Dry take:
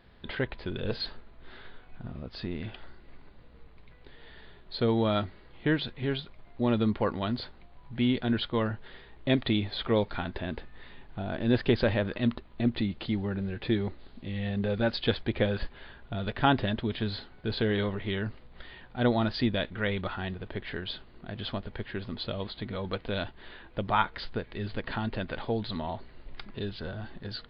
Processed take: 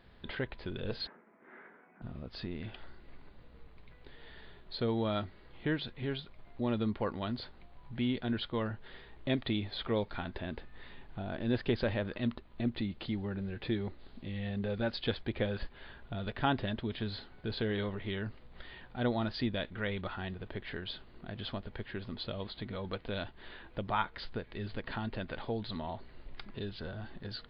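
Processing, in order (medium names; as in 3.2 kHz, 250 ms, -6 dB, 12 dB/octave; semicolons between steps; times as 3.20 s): in parallel at -0.5 dB: compression, threshold -40 dBFS, peak gain reduction 20 dB; 1.07–2.02 s: on the sum: Chebyshev band-pass 180–2200 Hz, order 4; trim -7.5 dB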